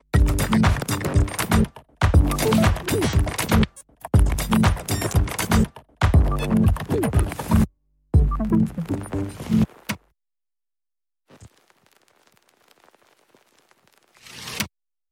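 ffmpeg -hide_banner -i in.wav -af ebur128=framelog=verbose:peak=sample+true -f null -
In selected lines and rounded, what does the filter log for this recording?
Integrated loudness:
  I:         -21.6 LUFS
  Threshold: -33.0 LUFS
Loudness range:
  LRA:        10.0 LU
  Threshold: -43.2 LUFS
  LRA low:   -30.7 LUFS
  LRA high:  -20.7 LUFS
Sample peak:
  Peak:       -5.1 dBFS
True peak:
  Peak:       -5.1 dBFS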